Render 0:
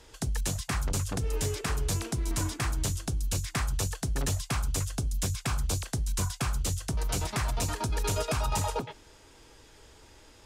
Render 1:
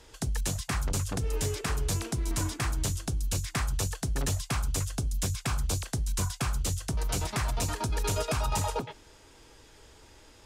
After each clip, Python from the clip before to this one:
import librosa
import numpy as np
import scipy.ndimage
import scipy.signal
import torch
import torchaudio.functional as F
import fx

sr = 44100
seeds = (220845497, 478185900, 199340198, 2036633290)

y = x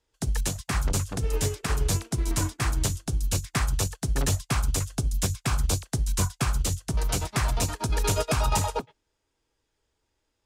y = fx.upward_expand(x, sr, threshold_db=-46.0, expansion=2.5)
y = F.gain(torch.from_numpy(y), 6.5).numpy()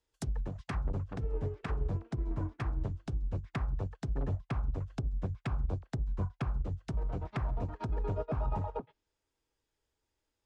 y = fx.env_lowpass_down(x, sr, base_hz=840.0, full_db=-23.0)
y = F.gain(torch.from_numpy(y), -7.5).numpy()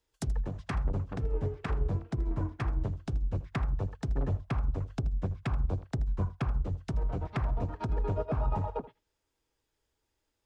y = x + 10.0 ** (-17.0 / 20.0) * np.pad(x, (int(80 * sr / 1000.0), 0))[:len(x)]
y = F.gain(torch.from_numpy(y), 3.0).numpy()